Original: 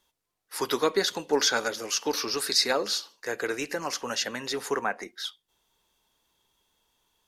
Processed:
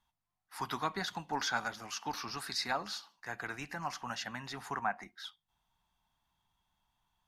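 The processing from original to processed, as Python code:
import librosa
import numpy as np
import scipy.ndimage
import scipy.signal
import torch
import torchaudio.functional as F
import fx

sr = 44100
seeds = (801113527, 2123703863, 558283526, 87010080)

y = fx.curve_eq(x, sr, hz=(170.0, 490.0, 730.0, 6700.0), db=(0, -23, -2, -15))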